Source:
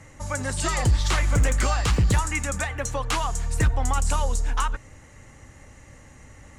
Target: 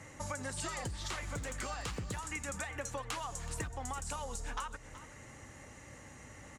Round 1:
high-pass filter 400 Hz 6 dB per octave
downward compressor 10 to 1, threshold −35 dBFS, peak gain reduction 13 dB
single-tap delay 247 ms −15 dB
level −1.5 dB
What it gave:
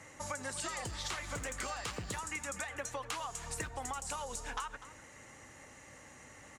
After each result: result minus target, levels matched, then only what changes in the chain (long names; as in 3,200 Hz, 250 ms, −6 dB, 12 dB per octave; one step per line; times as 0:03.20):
echo 128 ms early; 125 Hz band −5.0 dB
change: single-tap delay 375 ms −15 dB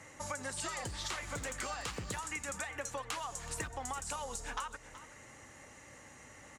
125 Hz band −5.0 dB
change: high-pass filter 140 Hz 6 dB per octave